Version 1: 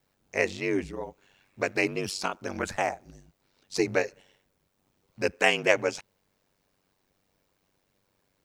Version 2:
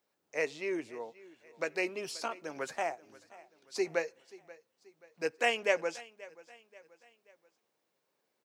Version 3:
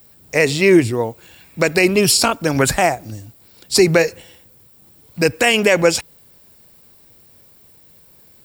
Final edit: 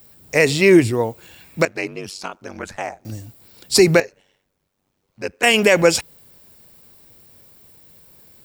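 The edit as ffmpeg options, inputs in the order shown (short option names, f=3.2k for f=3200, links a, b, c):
-filter_complex "[0:a]asplit=2[a][b];[2:a]asplit=3[c][d][e];[c]atrim=end=1.652[f];[a]atrim=start=1.648:end=3.052[g];[d]atrim=start=3.048:end=4.002[h];[b]atrim=start=3.998:end=5.432[i];[e]atrim=start=5.428[j];[f][g]acrossfade=d=0.004:c1=hsin:c2=hsin[k];[k][h]acrossfade=d=0.004:c1=hsin:c2=hsin[l];[l][i]acrossfade=d=0.004:c1=hsin:c2=hsin[m];[m][j]acrossfade=d=0.004:c1=hsin:c2=hsin"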